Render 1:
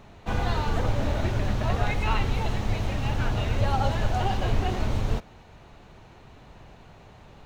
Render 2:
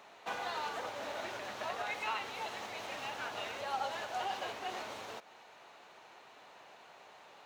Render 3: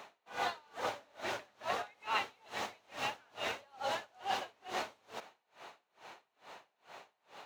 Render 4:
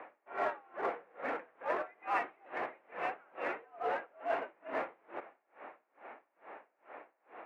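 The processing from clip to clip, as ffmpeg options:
ffmpeg -i in.wav -af "acompressor=threshold=-28dB:ratio=2.5,highpass=610,volume=-1dB" out.wav
ffmpeg -i in.wav -af "aeval=exprs='val(0)*pow(10,-33*(0.5-0.5*cos(2*PI*2.3*n/s))/20)':channel_layout=same,volume=6.5dB" out.wav
ffmpeg -i in.wav -filter_complex "[0:a]highpass=frequency=370:width_type=q:width=0.5412,highpass=frequency=370:width_type=q:width=1.307,lowpass=frequency=2300:width_type=q:width=0.5176,lowpass=frequency=2300:width_type=q:width=0.7071,lowpass=frequency=2300:width_type=q:width=1.932,afreqshift=-99,asplit=2[link_01][link_02];[link_02]asoftclip=type=hard:threshold=-39.5dB,volume=-10.5dB[link_03];[link_01][link_03]amix=inputs=2:normalize=0,volume=1dB" out.wav

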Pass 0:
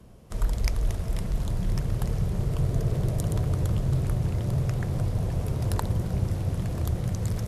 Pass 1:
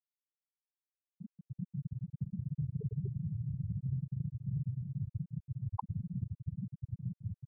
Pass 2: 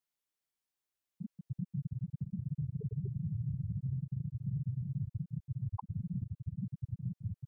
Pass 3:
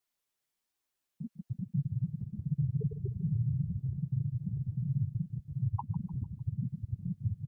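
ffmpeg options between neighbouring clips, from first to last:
ffmpeg -i in.wav -af "highpass=180,afftfilt=real='re*gte(hypot(re,im),0.178)':imag='im*gte(hypot(re,im),0.178)':win_size=1024:overlap=0.75,acompressor=threshold=-33dB:ratio=6,volume=1.5dB" out.wav
ffmpeg -i in.wav -af "alimiter=level_in=10dB:limit=-24dB:level=0:latency=1:release=332,volume=-10dB,volume=5dB" out.wav
ffmpeg -i in.wav -af "flanger=delay=2.6:depth=5.9:regen=-21:speed=1.3:shape=sinusoidal,aecho=1:1:150|300|450|600:0.158|0.0713|0.0321|0.0144,volume=8dB" out.wav

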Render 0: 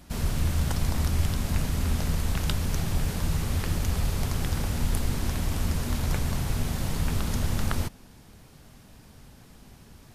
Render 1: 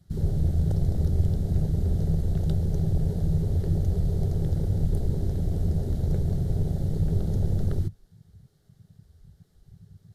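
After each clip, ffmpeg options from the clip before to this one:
ffmpeg -i in.wav -af "equalizer=frequency=100:width_type=o:width=0.33:gain=8,equalizer=frequency=160:width_type=o:width=0.33:gain=7,equalizer=frequency=250:width_type=o:width=0.33:gain=-7,equalizer=frequency=400:width_type=o:width=0.33:gain=8,equalizer=frequency=1000:width_type=o:width=0.33:gain=-10,equalizer=frequency=2500:width_type=o:width=0.33:gain=-12,equalizer=frequency=4000:width_type=o:width=0.33:gain=4,afwtdn=0.0316" out.wav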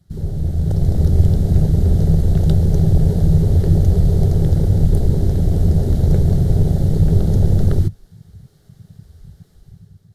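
ffmpeg -i in.wav -af "dynaudnorm=framelen=300:gausssize=5:maxgain=10dB,volume=2dB" out.wav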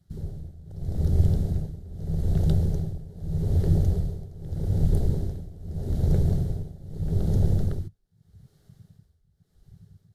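ffmpeg -i in.wav -af "tremolo=f=0.81:d=0.9,volume=-7.5dB" out.wav

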